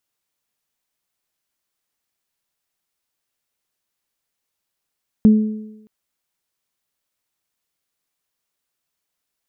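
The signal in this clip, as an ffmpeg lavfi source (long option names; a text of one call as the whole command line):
ffmpeg -f lavfi -i "aevalsrc='0.562*pow(10,-3*t/0.87)*sin(2*PI*215*t)+0.075*pow(10,-3*t/1.08)*sin(2*PI*430*t)':duration=0.62:sample_rate=44100" out.wav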